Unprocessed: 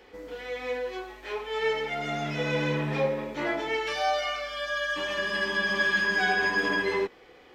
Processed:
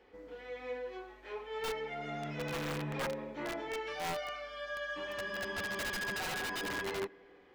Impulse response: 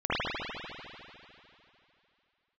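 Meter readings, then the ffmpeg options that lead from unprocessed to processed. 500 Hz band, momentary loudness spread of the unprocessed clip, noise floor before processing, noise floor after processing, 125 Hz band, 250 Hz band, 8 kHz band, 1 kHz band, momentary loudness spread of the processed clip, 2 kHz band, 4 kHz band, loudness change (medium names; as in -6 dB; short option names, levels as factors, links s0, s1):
-9.5 dB, 11 LU, -53 dBFS, -59 dBFS, -9.0 dB, -9.5 dB, -1.5 dB, -10.0 dB, 9 LU, -12.5 dB, -9.5 dB, -10.5 dB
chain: -filter_complex "[0:a]asplit=2[s0][s1];[1:a]atrim=start_sample=2205[s2];[s1][s2]afir=irnorm=-1:irlink=0,volume=0.015[s3];[s0][s3]amix=inputs=2:normalize=0,aeval=exprs='(mod(10*val(0)+1,2)-1)/10':c=same,highshelf=f=3300:g=-9.5,volume=0.376"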